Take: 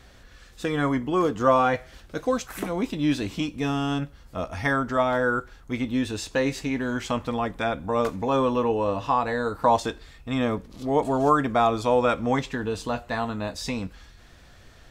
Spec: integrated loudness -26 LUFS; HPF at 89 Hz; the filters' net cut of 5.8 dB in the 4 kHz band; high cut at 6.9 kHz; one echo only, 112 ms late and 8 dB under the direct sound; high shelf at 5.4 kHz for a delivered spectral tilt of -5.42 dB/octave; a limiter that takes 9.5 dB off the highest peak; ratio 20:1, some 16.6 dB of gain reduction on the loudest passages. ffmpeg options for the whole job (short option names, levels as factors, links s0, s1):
-af "highpass=89,lowpass=6900,equalizer=f=4000:t=o:g=-4,highshelf=f=5400:g=-8,acompressor=threshold=0.0282:ratio=20,alimiter=level_in=1.5:limit=0.0631:level=0:latency=1,volume=0.668,aecho=1:1:112:0.398,volume=3.76"